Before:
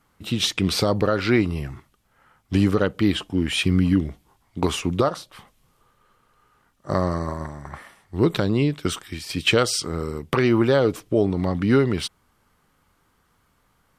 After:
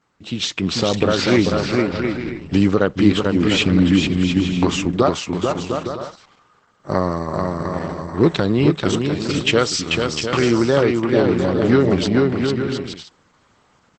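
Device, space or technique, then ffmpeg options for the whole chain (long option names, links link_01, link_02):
video call: -filter_complex "[0:a]asplit=3[link_01][link_02][link_03];[link_01]afade=type=out:start_time=9.67:duration=0.02[link_04];[link_02]equalizer=frequency=430:width_type=o:width=0.53:gain=-6,afade=type=in:start_time=9.67:duration=0.02,afade=type=out:start_time=10.36:duration=0.02[link_05];[link_03]afade=type=in:start_time=10.36:duration=0.02[link_06];[link_04][link_05][link_06]amix=inputs=3:normalize=0,highpass=110,aecho=1:1:440|704|862.4|957.4|1014:0.631|0.398|0.251|0.158|0.1,dynaudnorm=framelen=160:gausssize=9:maxgain=8dB" -ar 48000 -c:a libopus -b:a 12k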